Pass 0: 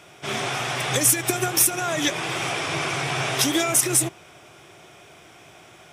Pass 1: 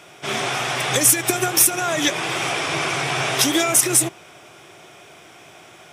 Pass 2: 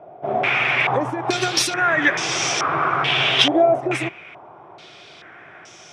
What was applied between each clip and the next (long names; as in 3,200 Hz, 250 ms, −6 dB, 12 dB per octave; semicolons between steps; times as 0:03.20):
low-shelf EQ 93 Hz −10.5 dB; level +3.5 dB
low-pass on a step sequencer 2.3 Hz 690–5,900 Hz; level −1 dB